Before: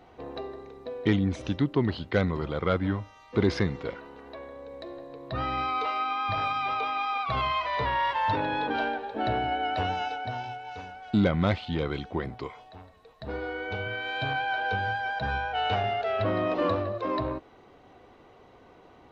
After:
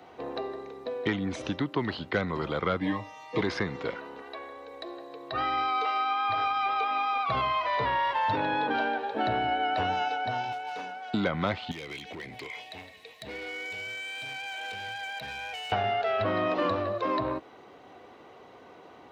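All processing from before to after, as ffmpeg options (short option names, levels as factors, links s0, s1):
-filter_complex "[0:a]asettb=1/sr,asplit=3[s0][s1][s2];[s0]atrim=end=2.804[s3];[s1]atrim=start=2.8:end=3.41,asetpts=PTS-STARTPTS,afade=t=in:d=0.004:c=qsin,afade=t=out:st=0.606:d=0.004:c=qsin,asuperstop=centerf=1400:order=12:qfactor=3.9,aecho=1:1:6.5:0.87,atrim=end_sample=26901[s4];[s2]atrim=start=3.406[s5];[s3][s4]acrossfade=d=0.004:c1=hsin:c2=qsin[s6];[s6][s5]acrossfade=d=0.004:c1=qsin:c2=hsin,asettb=1/sr,asplit=3[s7][s8][s9];[s7]atrim=end=4.224[s10];[s8]atrim=start=4.22:end=6.91,asetpts=PTS-STARTPTS,afade=t=in:d=0.004:c=qsin,afade=t=out:st=2.686:d=0.004:c=qsin,lowshelf=f=480:g=-8.5,aecho=1:1:2.6:0.56,atrim=end_sample=118629[s11];[s9]atrim=start=6.906[s12];[s10][s11]acrossfade=d=0.004:c1=hsin:c2=qsin[s13];[s13][s12]acrossfade=d=0.004:c1=qsin:c2=hsin,asettb=1/sr,asplit=3[s14][s15][s16];[s14]atrim=end=10.524[s17];[s15]atrim=start=10.52:end=11.12,asetpts=PTS-STARTPTS,afade=t=in:d=0.004:c=qsin,afade=t=out:st=0.596:d=0.004:c=qsin,highpass=f=160:w=0.5412,highpass=f=160:w=1.3066,asoftclip=type=hard:threshold=0.02[s18];[s16]atrim=start=11.116[s19];[s17][s18]acrossfade=d=0.004:c1=hsin:c2=qsin[s20];[s20][s19]acrossfade=d=0.004:c1=qsin:c2=hsin,asettb=1/sr,asplit=3[s21][s22][s23];[s21]atrim=end=11.714[s24];[s22]atrim=start=11.71:end=15.72,asetpts=PTS-STARTPTS,afade=t=in:d=0.004:c=qsin,afade=t=out:st=4.006:d=0.004:c=qsin,highshelf=f=1700:t=q:w=3:g=8,acompressor=threshold=0.0126:ratio=5:attack=3.2:release=140:knee=1:detection=peak,asoftclip=type=hard:threshold=0.0141[s25];[s23]atrim=start=15.716[s26];[s24][s25]acrossfade=d=0.004:c1=hsin:c2=qsin[s27];[s27][s26]acrossfade=d=0.004:c1=qsin:c2=hsin,highpass=67,lowshelf=f=140:g=-12,acrossover=split=270|720|2000[s28][s29][s30][s31];[s28]acompressor=threshold=0.0158:ratio=4[s32];[s29]acompressor=threshold=0.0126:ratio=4[s33];[s30]acompressor=threshold=0.02:ratio=4[s34];[s31]acompressor=threshold=0.00631:ratio=4[s35];[s32][s33][s34][s35]amix=inputs=4:normalize=0,volume=1.68"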